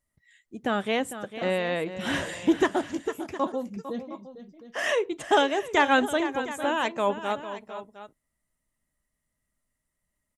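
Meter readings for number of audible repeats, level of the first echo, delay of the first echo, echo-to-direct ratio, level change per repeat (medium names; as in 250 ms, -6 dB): 2, -12.0 dB, 452 ms, -10.0 dB, no regular repeats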